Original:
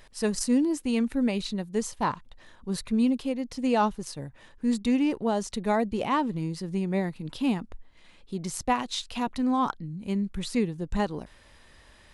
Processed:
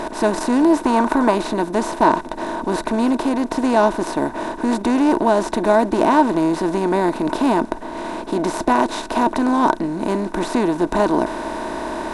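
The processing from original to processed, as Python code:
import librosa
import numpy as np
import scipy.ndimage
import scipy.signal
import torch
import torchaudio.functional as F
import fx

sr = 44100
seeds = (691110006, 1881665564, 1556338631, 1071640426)

y = fx.bin_compress(x, sr, power=0.4)
y = fx.small_body(y, sr, hz=(350.0, 640.0, 920.0, 1500.0), ring_ms=35, db=16)
y = fx.dynamic_eq(y, sr, hz=1100.0, q=1.4, threshold_db=-31.0, ratio=4.0, max_db=7, at=(0.79, 1.35))
y = F.gain(torch.from_numpy(y), -4.0).numpy()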